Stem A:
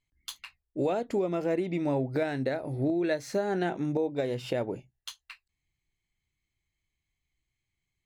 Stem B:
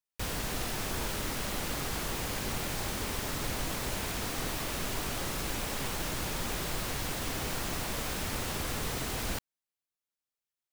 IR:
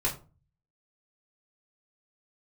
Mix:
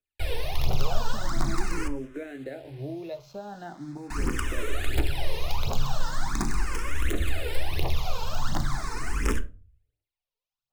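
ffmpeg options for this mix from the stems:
-filter_complex "[0:a]acrusher=bits=6:mix=0:aa=0.000001,volume=-7dB,asplit=2[link_01][link_02];[link_02]volume=-15dB[link_03];[1:a]aphaser=in_gain=1:out_gain=1:delay=2.3:decay=0.79:speed=1.4:type=triangular,aeval=exprs='(mod(6.68*val(0)+1,2)-1)/6.68':channel_layout=same,volume=0dB,asplit=3[link_04][link_05][link_06];[link_04]atrim=end=1.88,asetpts=PTS-STARTPTS,afade=type=out:start_time=1.876:duration=0.004:curve=hsin[link_07];[link_05]atrim=start=1.88:end=4.1,asetpts=PTS-STARTPTS,volume=0[link_08];[link_06]atrim=start=4.1,asetpts=PTS-STARTPTS,afade=type=in:duration=0.004:curve=hsin[link_09];[link_07][link_08][link_09]concat=n=3:v=0:a=1,asplit=2[link_10][link_11];[link_11]volume=-13dB[link_12];[2:a]atrim=start_sample=2205[link_13];[link_03][link_12]amix=inputs=2:normalize=0[link_14];[link_14][link_13]afir=irnorm=-1:irlink=0[link_15];[link_01][link_10][link_15]amix=inputs=3:normalize=0,aemphasis=mode=reproduction:type=50kf,acrossover=split=150[link_16][link_17];[link_17]acompressor=threshold=-22dB:ratio=6[link_18];[link_16][link_18]amix=inputs=2:normalize=0,asplit=2[link_19][link_20];[link_20]afreqshift=0.41[link_21];[link_19][link_21]amix=inputs=2:normalize=1"

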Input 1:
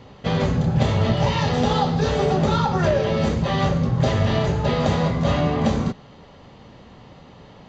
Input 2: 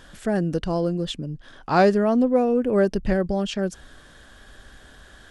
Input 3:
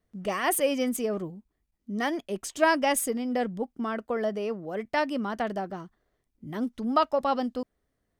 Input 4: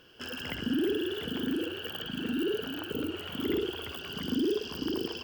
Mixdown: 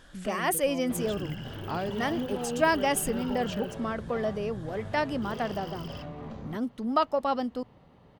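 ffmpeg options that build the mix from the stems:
ffmpeg -i stem1.wav -i stem2.wav -i stem3.wav -i stem4.wav -filter_complex "[0:a]lowpass=frequency=1900:poles=1,acompressor=threshold=-24dB:ratio=6,aeval=exprs='clip(val(0),-1,0.0422)':channel_layout=same,adelay=650,volume=-11.5dB[link_01];[1:a]acompressor=threshold=-24dB:ratio=6,volume=-6.5dB[link_02];[2:a]volume=-1.5dB,asplit=2[link_03][link_04];[3:a]highpass=590,asoftclip=type=tanh:threshold=-31dB,adelay=800,volume=-6.5dB,asplit=3[link_05][link_06][link_07];[link_05]atrim=end=3.75,asetpts=PTS-STARTPTS,afade=type=out:start_time=3.746:duration=0.004:curve=hsin[link_08];[link_06]atrim=start=3.75:end=5.22,asetpts=PTS-STARTPTS,volume=0[link_09];[link_07]atrim=start=5.22,asetpts=PTS-STARTPTS,afade=type=in:duration=0.004:curve=hsin[link_10];[link_08][link_09][link_10]concat=n=3:v=0:a=1[link_11];[link_04]apad=whole_len=238317[link_12];[link_02][link_12]sidechaincompress=threshold=-31dB:ratio=8:attack=16:release=135[link_13];[link_01][link_13][link_03][link_11]amix=inputs=4:normalize=0" out.wav

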